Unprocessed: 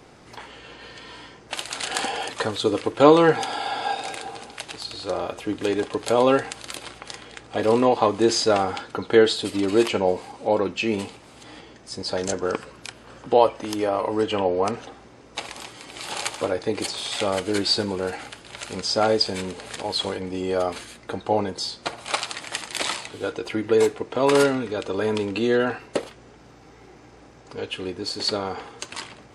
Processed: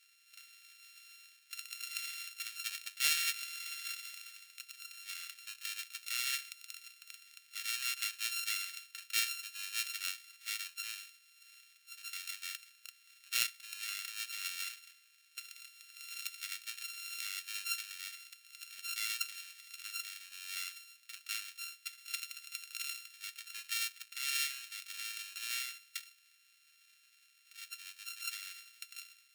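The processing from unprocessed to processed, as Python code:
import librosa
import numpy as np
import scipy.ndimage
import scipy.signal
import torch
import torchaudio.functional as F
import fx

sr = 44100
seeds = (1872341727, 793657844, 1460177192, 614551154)

y = np.r_[np.sort(x[:len(x) // 32 * 32].reshape(-1, 32), axis=1).ravel(), x[len(x) // 32 * 32:]]
y = scipy.signal.sosfilt(scipy.signal.cheby2(4, 50, 800.0, 'highpass', fs=sr, output='sos'), y)
y = fx.cheby_harmonics(y, sr, harmonics=(3, 5), levels_db=(-15, -32), full_scale_db=-1.0)
y = y * librosa.db_to_amplitude(-6.5)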